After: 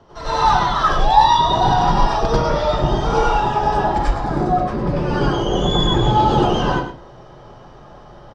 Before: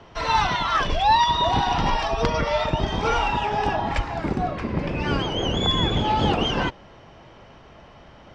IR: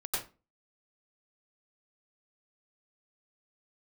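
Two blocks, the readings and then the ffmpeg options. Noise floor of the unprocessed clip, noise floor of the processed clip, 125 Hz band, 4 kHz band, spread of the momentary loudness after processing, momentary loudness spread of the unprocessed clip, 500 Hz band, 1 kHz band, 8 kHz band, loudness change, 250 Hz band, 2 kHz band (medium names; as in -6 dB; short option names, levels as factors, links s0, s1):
-48 dBFS, -42 dBFS, +6.0 dB, +1.0 dB, 7 LU, 7 LU, +6.5 dB, +6.5 dB, no reading, +5.5 dB, +5.5 dB, +1.0 dB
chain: -filter_complex "[0:a]equalizer=f=2400:w=1.5:g=-11.5,asoftclip=type=hard:threshold=0.282,aecho=1:1:108:0.299[s0];[1:a]atrim=start_sample=2205[s1];[s0][s1]afir=irnorm=-1:irlink=0,volume=1.26"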